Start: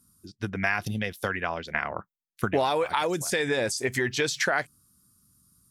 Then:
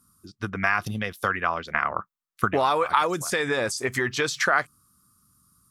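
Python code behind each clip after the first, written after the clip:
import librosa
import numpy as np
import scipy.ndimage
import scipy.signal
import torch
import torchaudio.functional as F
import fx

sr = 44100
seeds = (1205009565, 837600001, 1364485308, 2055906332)

y = fx.peak_eq(x, sr, hz=1200.0, db=12.0, octaves=0.5)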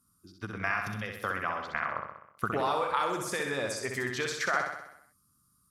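y = fx.echo_feedback(x, sr, ms=64, feedback_pct=58, wet_db=-5.0)
y = F.gain(torch.from_numpy(y), -8.5).numpy()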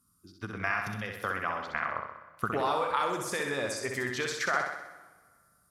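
y = fx.rev_plate(x, sr, seeds[0], rt60_s=1.8, hf_ratio=0.75, predelay_ms=0, drr_db=15.0)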